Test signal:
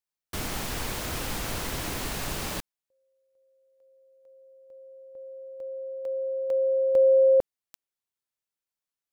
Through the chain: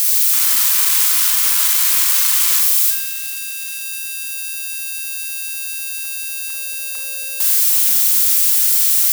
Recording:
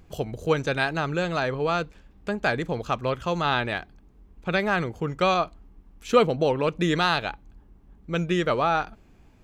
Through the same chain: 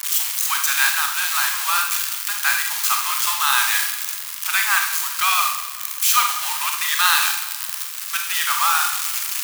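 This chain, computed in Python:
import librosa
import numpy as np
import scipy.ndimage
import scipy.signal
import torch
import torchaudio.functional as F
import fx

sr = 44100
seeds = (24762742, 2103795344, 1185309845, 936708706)

p1 = x + 0.5 * 10.0 ** (-15.5 / 20.0) * np.diff(np.sign(x), prepend=np.sign(x[:1]))
p2 = scipy.signal.sosfilt(scipy.signal.butter(8, 960.0, 'highpass', fs=sr, output='sos'), p1)
p3 = p2 + fx.echo_feedback(p2, sr, ms=191, feedback_pct=50, wet_db=-16.0, dry=0)
p4 = fx.rev_schroeder(p3, sr, rt60_s=0.58, comb_ms=32, drr_db=3.0)
y = p4 * librosa.db_to_amplitude(5.5)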